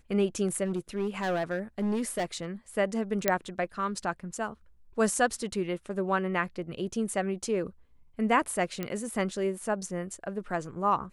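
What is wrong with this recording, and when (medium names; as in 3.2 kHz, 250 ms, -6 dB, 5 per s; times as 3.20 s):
0.64–2.46 s: clipped -25 dBFS
3.28 s: pop -8 dBFS
8.83 s: pop -18 dBFS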